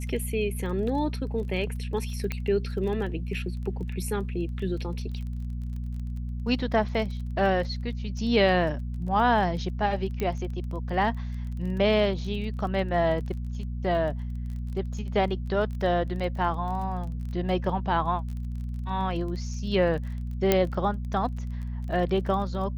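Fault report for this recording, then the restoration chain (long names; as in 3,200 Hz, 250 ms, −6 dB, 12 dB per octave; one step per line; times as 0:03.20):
surface crackle 22 per second −36 dBFS
mains hum 60 Hz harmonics 4 −32 dBFS
0:02.32: click −16 dBFS
0:10.20: click −17 dBFS
0:20.52: click −6 dBFS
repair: click removal
hum removal 60 Hz, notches 4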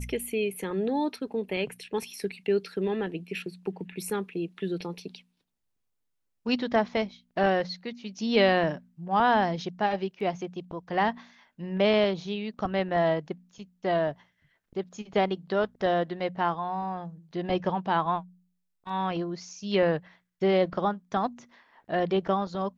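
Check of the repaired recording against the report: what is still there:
0:10.20: click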